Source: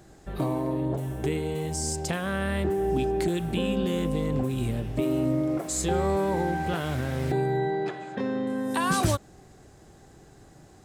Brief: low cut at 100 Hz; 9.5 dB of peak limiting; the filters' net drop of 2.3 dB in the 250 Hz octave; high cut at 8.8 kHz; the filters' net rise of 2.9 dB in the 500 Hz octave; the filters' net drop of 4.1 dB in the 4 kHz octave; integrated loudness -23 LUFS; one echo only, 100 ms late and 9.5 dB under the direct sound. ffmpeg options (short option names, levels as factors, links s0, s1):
-af "highpass=100,lowpass=8800,equalizer=f=250:t=o:g=-5.5,equalizer=f=500:t=o:g=6,equalizer=f=4000:t=o:g=-5.5,alimiter=limit=0.0841:level=0:latency=1,aecho=1:1:100:0.335,volume=2.11"